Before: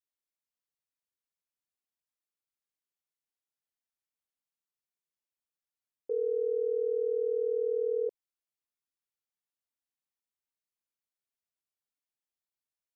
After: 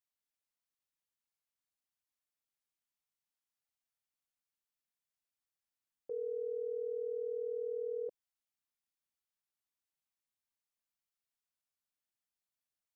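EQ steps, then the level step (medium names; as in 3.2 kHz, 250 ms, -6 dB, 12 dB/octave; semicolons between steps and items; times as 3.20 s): peaking EQ 410 Hz -10.5 dB 0.56 oct; -1.0 dB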